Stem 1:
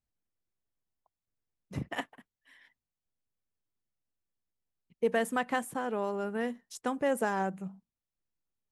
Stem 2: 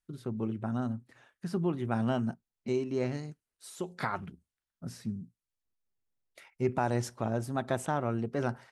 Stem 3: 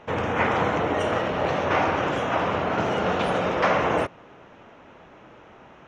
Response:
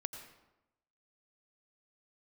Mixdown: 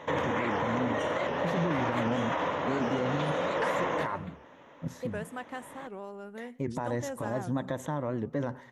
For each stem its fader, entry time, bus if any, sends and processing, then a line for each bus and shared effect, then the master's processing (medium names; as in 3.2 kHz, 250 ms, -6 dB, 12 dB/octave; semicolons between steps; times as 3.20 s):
-10.0 dB, 0.00 s, no bus, send -16.5 dB, none
+2.0 dB, 0.00 s, bus A, send -18.5 dB, treble shelf 3.4 kHz -9.5 dB
+1.5 dB, 0.00 s, bus A, send -11.5 dB, high-pass 180 Hz 6 dB/octave; peak limiter -16.5 dBFS, peak gain reduction 6.5 dB; auto duck -12 dB, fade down 0.40 s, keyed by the second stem
bus A: 0.0 dB, rippled EQ curve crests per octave 1.1, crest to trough 12 dB; peak limiter -23 dBFS, peak gain reduction 10 dB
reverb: on, RT60 0.95 s, pre-delay 81 ms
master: warped record 78 rpm, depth 160 cents